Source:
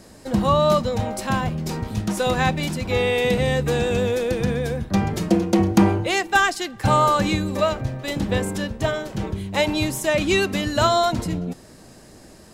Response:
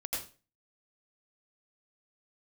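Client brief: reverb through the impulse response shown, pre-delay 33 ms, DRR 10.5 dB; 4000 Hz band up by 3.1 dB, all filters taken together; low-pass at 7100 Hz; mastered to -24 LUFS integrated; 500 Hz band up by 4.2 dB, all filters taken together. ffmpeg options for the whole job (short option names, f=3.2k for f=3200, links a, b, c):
-filter_complex "[0:a]lowpass=7.1k,equalizer=f=500:t=o:g=5,equalizer=f=4k:t=o:g=4,asplit=2[a][b];[1:a]atrim=start_sample=2205,adelay=33[c];[b][c]afir=irnorm=-1:irlink=0,volume=-13dB[d];[a][d]amix=inputs=2:normalize=0,volume=-5dB"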